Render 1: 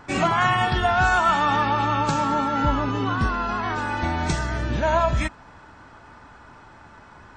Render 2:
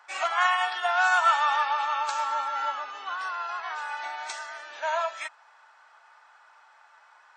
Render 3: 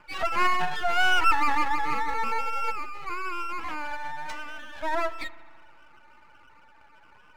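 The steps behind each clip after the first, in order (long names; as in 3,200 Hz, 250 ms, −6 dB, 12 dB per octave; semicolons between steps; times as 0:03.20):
high-pass filter 740 Hz 24 dB per octave; notch filter 1,000 Hz, Q 22; expander for the loud parts 1.5 to 1, over −31 dBFS
expanding power law on the bin magnitudes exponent 2.4; half-wave rectification; spring reverb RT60 1.7 s, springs 35 ms, chirp 50 ms, DRR 17 dB; level +4.5 dB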